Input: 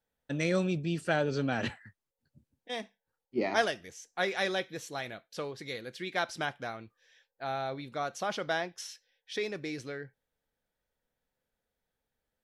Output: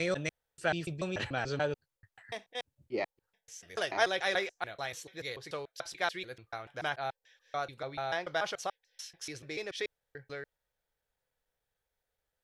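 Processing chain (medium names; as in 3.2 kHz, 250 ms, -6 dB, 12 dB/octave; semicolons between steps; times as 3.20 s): slices played last to first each 145 ms, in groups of 4; peaking EQ 230 Hz -12.5 dB 0.87 oct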